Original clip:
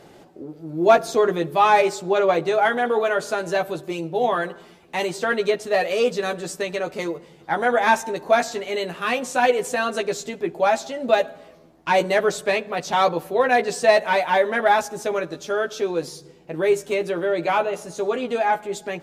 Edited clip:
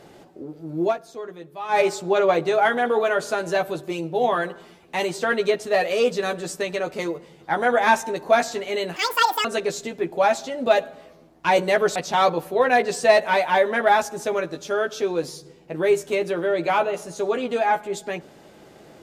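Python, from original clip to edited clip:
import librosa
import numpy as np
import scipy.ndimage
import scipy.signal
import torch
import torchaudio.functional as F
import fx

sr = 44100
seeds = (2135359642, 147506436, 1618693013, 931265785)

y = fx.edit(x, sr, fx.fade_down_up(start_s=0.81, length_s=1.0, db=-16.0, fade_s=0.13),
    fx.speed_span(start_s=8.96, length_s=0.91, speed=1.87),
    fx.cut(start_s=12.38, length_s=0.37), tone=tone)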